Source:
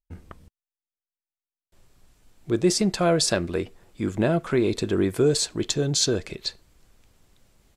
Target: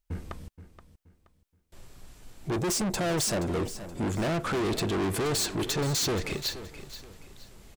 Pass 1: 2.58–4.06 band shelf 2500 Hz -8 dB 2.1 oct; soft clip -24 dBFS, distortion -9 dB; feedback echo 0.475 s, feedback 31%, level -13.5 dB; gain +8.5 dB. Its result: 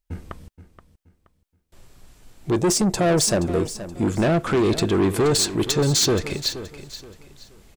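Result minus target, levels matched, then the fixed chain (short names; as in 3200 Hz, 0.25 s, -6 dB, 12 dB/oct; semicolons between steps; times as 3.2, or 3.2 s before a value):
soft clip: distortion -6 dB
2.58–4.06 band shelf 2500 Hz -8 dB 2.1 oct; soft clip -35 dBFS, distortion -3 dB; feedback echo 0.475 s, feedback 31%, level -13.5 dB; gain +8.5 dB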